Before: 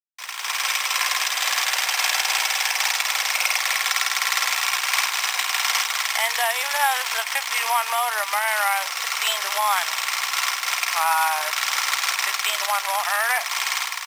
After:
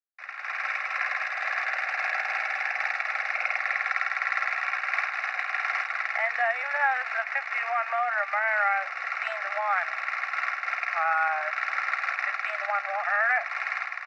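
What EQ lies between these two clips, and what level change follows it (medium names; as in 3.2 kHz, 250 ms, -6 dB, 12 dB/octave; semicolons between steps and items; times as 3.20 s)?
high-pass 480 Hz 12 dB/octave; low-pass 3 kHz 24 dB/octave; static phaser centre 650 Hz, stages 8; 0.0 dB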